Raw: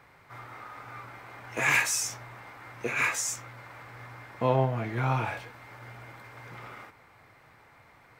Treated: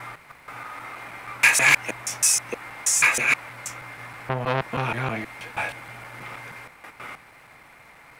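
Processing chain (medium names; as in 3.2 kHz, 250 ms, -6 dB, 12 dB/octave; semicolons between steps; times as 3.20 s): slices played last to first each 159 ms, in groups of 3; fifteen-band graphic EQ 100 Hz -9 dB, 400 Hz -3 dB, 2.5 kHz +5 dB, 10 kHz +9 dB; crackle 140 per s -56 dBFS; transformer saturation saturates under 2.4 kHz; trim +6.5 dB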